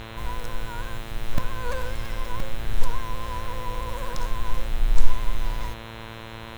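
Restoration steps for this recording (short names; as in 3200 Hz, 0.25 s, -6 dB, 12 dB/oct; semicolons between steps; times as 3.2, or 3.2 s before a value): de-hum 112.7 Hz, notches 37; interpolate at 1.38/2.4, 2.5 ms; expander -30 dBFS, range -21 dB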